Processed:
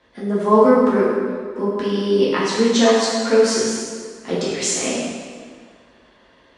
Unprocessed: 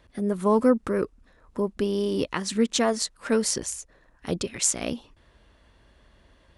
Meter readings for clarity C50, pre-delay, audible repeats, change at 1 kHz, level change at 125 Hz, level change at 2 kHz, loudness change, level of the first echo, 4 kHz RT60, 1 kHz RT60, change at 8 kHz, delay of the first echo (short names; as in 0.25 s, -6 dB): -1.5 dB, 5 ms, none, +10.0 dB, +5.0 dB, +9.0 dB, +7.5 dB, none, 1.5 s, 1.9 s, +3.5 dB, none